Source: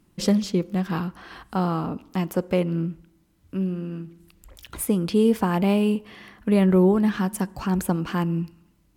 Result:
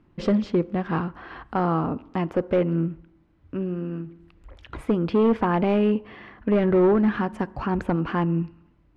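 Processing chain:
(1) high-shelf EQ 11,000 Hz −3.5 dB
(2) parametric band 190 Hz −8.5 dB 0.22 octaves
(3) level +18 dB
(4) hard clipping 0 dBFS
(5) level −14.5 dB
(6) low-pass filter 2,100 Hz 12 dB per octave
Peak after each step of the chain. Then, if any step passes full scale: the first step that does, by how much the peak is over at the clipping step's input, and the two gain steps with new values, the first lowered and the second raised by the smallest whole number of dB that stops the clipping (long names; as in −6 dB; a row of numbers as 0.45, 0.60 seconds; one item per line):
−7.5, −10.0, +8.0, 0.0, −14.5, −14.0 dBFS
step 3, 8.0 dB
step 3 +10 dB, step 5 −6.5 dB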